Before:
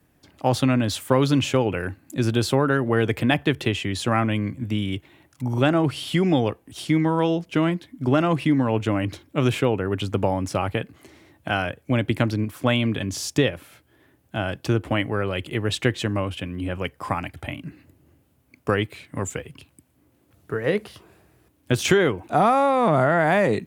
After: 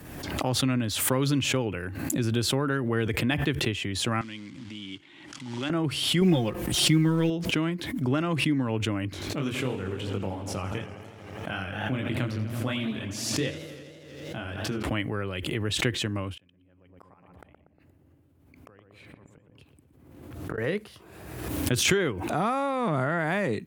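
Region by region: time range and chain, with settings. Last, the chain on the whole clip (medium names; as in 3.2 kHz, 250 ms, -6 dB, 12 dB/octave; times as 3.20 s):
4.21–5.70 s: compression 2.5:1, threshold -33 dBFS + short-mantissa float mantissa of 2-bit + cabinet simulation 180–8100 Hz, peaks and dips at 290 Hz +3 dB, 460 Hz -9 dB, 670 Hz -8 dB, 2.1 kHz +4 dB, 3.2 kHz +8 dB, 4.7 kHz +4 dB
6.21–7.30 s: companding laws mixed up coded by mu + bass shelf 70 Hz +11 dB + comb 5.6 ms, depth 80%
9.10–14.83 s: chorus 2.7 Hz, delay 20 ms, depth 4.1 ms + modulated delay 82 ms, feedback 77%, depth 124 cents, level -12 dB
16.37–20.58 s: treble shelf 3.2 kHz -7.5 dB + inverted gate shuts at -27 dBFS, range -30 dB + filtered feedback delay 119 ms, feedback 71%, low-pass 890 Hz, level -4 dB
whole clip: dynamic bell 700 Hz, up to -6 dB, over -35 dBFS, Q 1.4; swell ahead of each attack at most 43 dB/s; trim -5.5 dB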